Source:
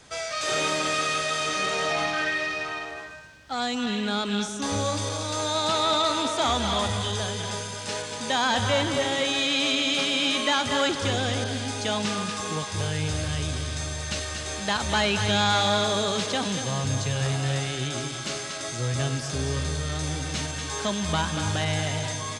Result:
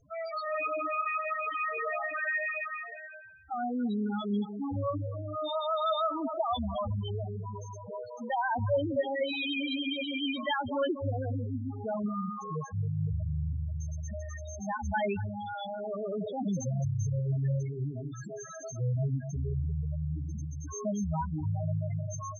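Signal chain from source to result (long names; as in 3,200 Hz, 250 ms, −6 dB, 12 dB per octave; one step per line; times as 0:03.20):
gate on every frequency bin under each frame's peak −30 dB strong
0:15.13–0:17.30: compressor whose output falls as the input rises −28 dBFS, ratio −1
spectral peaks only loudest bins 4
level −1.5 dB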